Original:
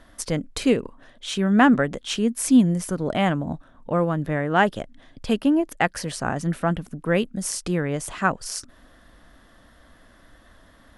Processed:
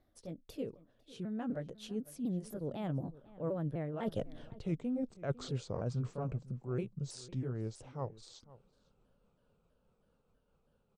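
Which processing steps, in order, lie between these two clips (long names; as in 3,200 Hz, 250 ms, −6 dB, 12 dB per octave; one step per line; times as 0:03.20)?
pitch shifter swept by a sawtooth −4 semitones, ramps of 287 ms
source passing by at 0:04.48, 44 m/s, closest 5.3 metres
in parallel at +3 dB: speech leveller within 4 dB 2 s
on the sum: high-shelf EQ 8,100 Hz +5 dB
reversed playback
downward compressor 16 to 1, threshold −36 dBFS, peak gain reduction 21.5 dB
reversed playback
graphic EQ with 10 bands 125 Hz +8 dB, 500 Hz +7 dB, 1,000 Hz −4 dB, 2,000 Hz −7 dB, 8,000 Hz −10 dB
slap from a distant wall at 86 metres, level −19 dB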